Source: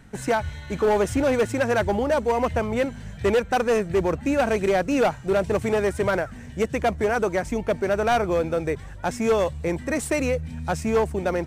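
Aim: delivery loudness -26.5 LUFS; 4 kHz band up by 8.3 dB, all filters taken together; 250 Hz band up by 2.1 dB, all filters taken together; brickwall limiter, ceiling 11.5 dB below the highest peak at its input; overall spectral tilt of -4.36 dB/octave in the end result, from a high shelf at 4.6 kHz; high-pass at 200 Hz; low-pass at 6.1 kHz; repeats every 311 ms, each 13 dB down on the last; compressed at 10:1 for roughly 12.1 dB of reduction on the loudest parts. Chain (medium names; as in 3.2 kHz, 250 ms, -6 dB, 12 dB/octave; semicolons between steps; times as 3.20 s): high-pass 200 Hz; low-pass 6.1 kHz; peaking EQ 250 Hz +4.5 dB; peaking EQ 4 kHz +8.5 dB; treble shelf 4.6 kHz +6.5 dB; compression 10:1, threshold -28 dBFS; peak limiter -26.5 dBFS; feedback delay 311 ms, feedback 22%, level -13 dB; trim +10 dB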